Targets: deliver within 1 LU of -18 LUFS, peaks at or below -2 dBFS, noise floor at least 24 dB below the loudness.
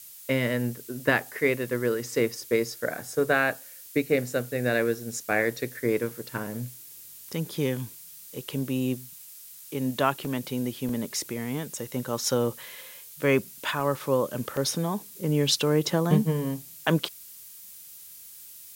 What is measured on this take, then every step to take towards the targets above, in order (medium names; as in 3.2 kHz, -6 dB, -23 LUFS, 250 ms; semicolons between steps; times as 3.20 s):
dropouts 4; longest dropout 2.0 ms; noise floor -46 dBFS; noise floor target -52 dBFS; loudness -27.5 LUFS; peak level -8.5 dBFS; loudness target -18.0 LUFS
-> interpolate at 10.25/10.89/13.80/14.57 s, 2 ms; noise print and reduce 6 dB; trim +9.5 dB; peak limiter -2 dBFS